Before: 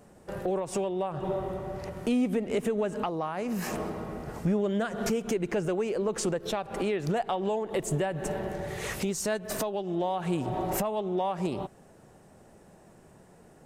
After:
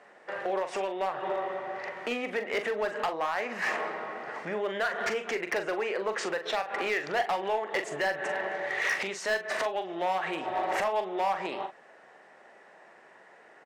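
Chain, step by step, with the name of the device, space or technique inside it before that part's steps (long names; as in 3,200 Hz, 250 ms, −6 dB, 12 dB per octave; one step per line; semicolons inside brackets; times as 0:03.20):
megaphone (band-pass filter 660–3,500 Hz; parametric band 1,900 Hz +9.5 dB 0.5 octaves; hard clipping −28.5 dBFS, distortion −13 dB; double-tracking delay 42 ms −8.5 dB)
level +5 dB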